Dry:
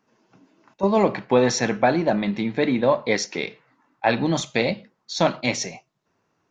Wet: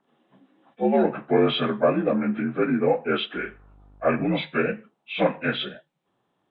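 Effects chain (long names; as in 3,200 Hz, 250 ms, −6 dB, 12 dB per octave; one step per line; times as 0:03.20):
partials spread apart or drawn together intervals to 82%
0:03.35–0:04.34: hum with harmonics 50 Hz, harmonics 30, −52 dBFS −8 dB per octave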